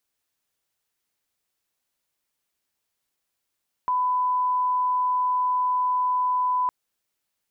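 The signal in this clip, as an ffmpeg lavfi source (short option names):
-f lavfi -i "sine=f=1000:d=2.81:r=44100,volume=-1.94dB"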